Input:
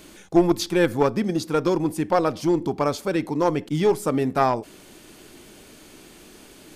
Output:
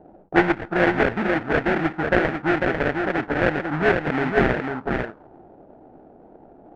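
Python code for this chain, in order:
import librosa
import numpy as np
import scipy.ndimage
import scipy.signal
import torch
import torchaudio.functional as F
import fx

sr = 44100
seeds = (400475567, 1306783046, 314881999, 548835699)

y = fx.wiener(x, sr, points=15)
y = fx.low_shelf(y, sr, hz=86.0, db=-8.5)
y = fx.sample_hold(y, sr, seeds[0], rate_hz=1100.0, jitter_pct=20)
y = y + 10.0 ** (-4.5 / 20.0) * np.pad(y, (int(497 * sr / 1000.0), 0))[:len(y)]
y = fx.envelope_lowpass(y, sr, base_hz=710.0, top_hz=1900.0, q=2.2, full_db=-19.5, direction='up')
y = y * librosa.db_to_amplitude(-1.0)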